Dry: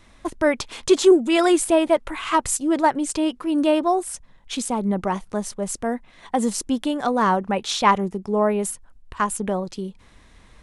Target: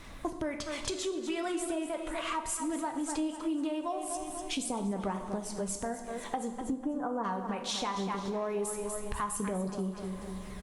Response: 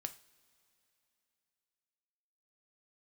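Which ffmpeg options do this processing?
-filter_complex "[0:a]acrusher=bits=9:mix=0:aa=0.000001,asplit=3[link_01][link_02][link_03];[link_01]afade=type=out:start_time=6.47:duration=0.02[link_04];[link_02]lowpass=frequency=1400:width=0.5412,lowpass=frequency=1400:width=1.3066,afade=type=in:start_time=6.47:duration=0.02,afade=type=out:start_time=7.23:duration=0.02[link_05];[link_03]afade=type=in:start_time=7.23:duration=0.02[link_06];[link_04][link_05][link_06]amix=inputs=3:normalize=0,aecho=1:1:245|490|735|980:0.251|0.0929|0.0344|0.0127,asettb=1/sr,asplit=3[link_07][link_08][link_09];[link_07]atrim=end=7.964[link_10];[link_08]atrim=start=7.96:end=9.7,asetpts=PTS-STARTPTS,afade=type=in:duration=0.004:curve=qsin,afade=type=out:start_time=1.736:duration=0.004:curve=qsin,acontrast=86[link_11];[link_09]atrim=start=9.696[link_12];[link_10][link_11]acrossfade=duration=0.004:curve1=hsin:curve2=qsin[link_13];[link_13][link_12]acrossfade=duration=0.004:curve1=qsin:curve2=hsin,alimiter=limit=-15dB:level=0:latency=1:release=361,aphaser=in_gain=1:out_gain=1:delay=4.3:decay=0.35:speed=0.2:type=sinusoidal[link_14];[1:a]atrim=start_sample=2205,asetrate=22932,aresample=44100[link_15];[link_14][link_15]afir=irnorm=-1:irlink=0,acompressor=threshold=-35dB:ratio=3" -ar 48000 -c:a libopus -b:a 64k

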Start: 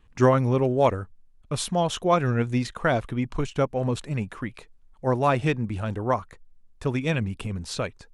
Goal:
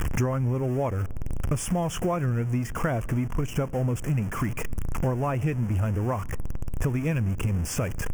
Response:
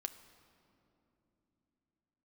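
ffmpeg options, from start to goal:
-filter_complex "[0:a]aeval=exprs='val(0)+0.5*0.0355*sgn(val(0))':channel_layout=same,equalizer=frequency=82:width_type=o:width=2.5:gain=5.5,acompressor=threshold=-32dB:ratio=6,asuperstop=centerf=4000:order=4:qfactor=1.5,asplit=2[link_01][link_02];[1:a]atrim=start_sample=2205,lowshelf=frequency=350:gain=10.5[link_03];[link_02][link_03]afir=irnorm=-1:irlink=0,volume=-12.5dB[link_04];[link_01][link_04]amix=inputs=2:normalize=0,volume=5dB"

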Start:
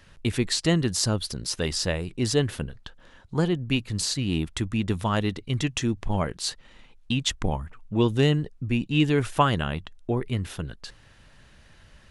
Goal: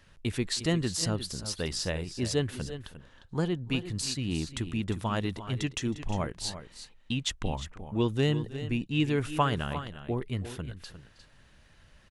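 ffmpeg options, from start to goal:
ffmpeg -i in.wav -af "aecho=1:1:317|353:0.1|0.251,volume=-5.5dB" out.wav

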